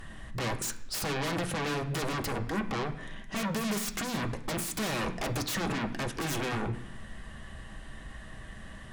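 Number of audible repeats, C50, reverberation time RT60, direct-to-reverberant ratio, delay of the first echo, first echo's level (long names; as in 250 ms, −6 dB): no echo audible, 13.0 dB, 0.70 s, 4.0 dB, no echo audible, no echo audible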